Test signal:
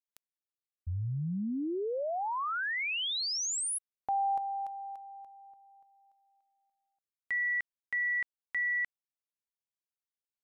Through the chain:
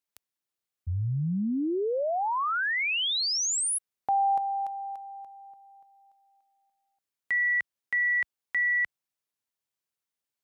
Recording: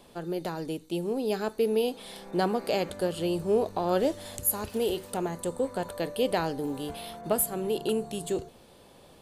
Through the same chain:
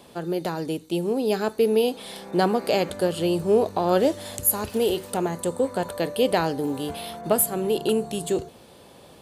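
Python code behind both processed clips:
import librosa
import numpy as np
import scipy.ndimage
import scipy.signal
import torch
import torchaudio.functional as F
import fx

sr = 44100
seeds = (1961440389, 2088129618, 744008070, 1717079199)

y = scipy.signal.sosfilt(scipy.signal.butter(2, 61.0, 'highpass', fs=sr, output='sos'), x)
y = y * 10.0 ** (5.5 / 20.0)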